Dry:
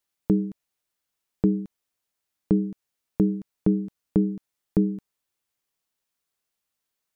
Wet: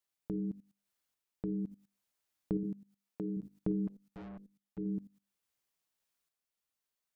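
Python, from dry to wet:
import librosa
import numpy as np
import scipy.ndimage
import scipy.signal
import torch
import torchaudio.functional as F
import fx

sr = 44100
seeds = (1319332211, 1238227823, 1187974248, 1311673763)

y = fx.bessel_highpass(x, sr, hz=200.0, order=2, at=(2.63, 3.37))
y = fx.hum_notches(y, sr, base_hz=50, count=10)
y = fx.level_steps(y, sr, step_db=18)
y = fx.tremolo_random(y, sr, seeds[0], hz=3.5, depth_pct=55)
y = fx.tube_stage(y, sr, drive_db=51.0, bias=0.5, at=(3.87, 4.78))
y = F.gain(torch.from_numpy(y), 5.5).numpy()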